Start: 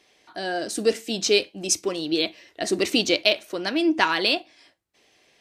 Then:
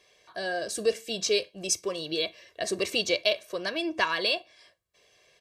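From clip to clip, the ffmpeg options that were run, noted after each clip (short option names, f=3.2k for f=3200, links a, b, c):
-filter_complex "[0:a]aecho=1:1:1.8:0.75,asplit=2[a][b];[b]acompressor=threshold=-27dB:ratio=6,volume=-1.5dB[c];[a][c]amix=inputs=2:normalize=0,volume=-9dB"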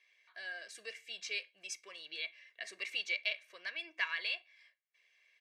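-af "bandpass=f=2.1k:t=q:w=3.8:csg=0,crystalizer=i=1.5:c=0,volume=-2dB"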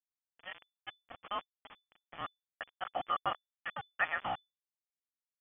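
-af "aeval=exprs='val(0)*gte(abs(val(0)),0.0126)':c=same,lowpass=f=3k:t=q:w=0.5098,lowpass=f=3k:t=q:w=0.6013,lowpass=f=3k:t=q:w=0.9,lowpass=f=3k:t=q:w=2.563,afreqshift=-3500,volume=3.5dB"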